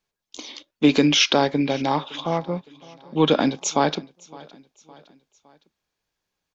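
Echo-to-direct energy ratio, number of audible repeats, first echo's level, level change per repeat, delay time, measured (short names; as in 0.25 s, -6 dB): -21.5 dB, 2, -22.5 dB, -6.5 dB, 0.562 s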